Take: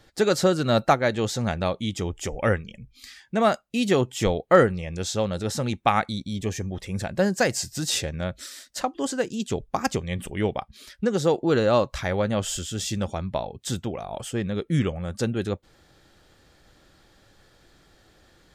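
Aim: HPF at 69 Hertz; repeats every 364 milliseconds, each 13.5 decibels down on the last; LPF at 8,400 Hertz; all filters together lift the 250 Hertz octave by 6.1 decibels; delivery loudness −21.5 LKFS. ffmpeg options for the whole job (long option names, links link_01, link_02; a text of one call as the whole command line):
ffmpeg -i in.wav -af "highpass=69,lowpass=8400,equalizer=frequency=250:width_type=o:gain=8,aecho=1:1:364|728:0.211|0.0444,volume=1dB" out.wav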